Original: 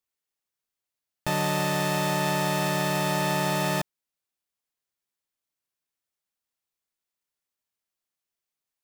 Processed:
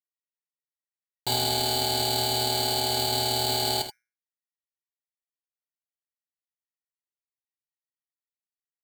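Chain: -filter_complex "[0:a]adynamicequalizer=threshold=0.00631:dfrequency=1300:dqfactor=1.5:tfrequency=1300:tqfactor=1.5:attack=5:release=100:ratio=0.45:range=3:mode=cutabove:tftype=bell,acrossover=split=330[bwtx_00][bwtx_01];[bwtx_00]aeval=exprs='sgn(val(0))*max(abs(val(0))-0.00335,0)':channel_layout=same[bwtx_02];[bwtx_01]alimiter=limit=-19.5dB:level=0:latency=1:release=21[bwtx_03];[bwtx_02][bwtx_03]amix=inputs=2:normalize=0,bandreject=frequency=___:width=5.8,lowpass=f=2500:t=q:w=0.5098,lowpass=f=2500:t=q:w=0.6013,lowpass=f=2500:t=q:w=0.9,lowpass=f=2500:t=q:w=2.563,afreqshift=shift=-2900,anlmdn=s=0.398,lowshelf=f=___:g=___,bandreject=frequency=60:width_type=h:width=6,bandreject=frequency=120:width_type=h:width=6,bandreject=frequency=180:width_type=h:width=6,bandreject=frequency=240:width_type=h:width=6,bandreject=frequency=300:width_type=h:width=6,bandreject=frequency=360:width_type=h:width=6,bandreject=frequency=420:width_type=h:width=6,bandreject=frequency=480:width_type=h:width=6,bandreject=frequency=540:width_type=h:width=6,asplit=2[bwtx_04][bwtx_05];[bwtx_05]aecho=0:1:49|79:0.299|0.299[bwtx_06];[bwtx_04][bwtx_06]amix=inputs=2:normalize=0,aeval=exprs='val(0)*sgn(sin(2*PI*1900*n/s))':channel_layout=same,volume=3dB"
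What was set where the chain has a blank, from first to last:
200, 230, 6.5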